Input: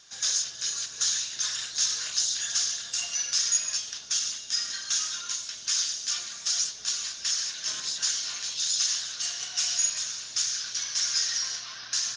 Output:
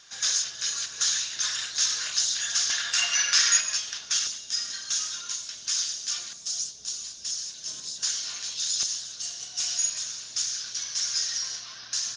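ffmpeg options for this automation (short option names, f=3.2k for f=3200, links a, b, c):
-af "asetnsamples=n=441:p=0,asendcmd='2.7 equalizer g 15;3.61 equalizer g 6;4.27 equalizer g -2.5;6.33 equalizer g -14;8.03 equalizer g -2.5;8.83 equalizer g -10.5;9.6 equalizer g -4',equalizer=f=1.7k:t=o:w=2.3:g=4.5"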